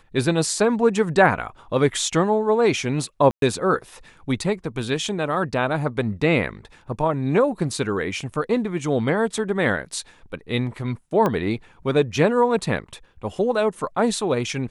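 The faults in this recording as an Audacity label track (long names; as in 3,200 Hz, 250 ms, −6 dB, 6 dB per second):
3.310000	3.420000	drop-out 112 ms
11.260000	11.260000	click −10 dBFS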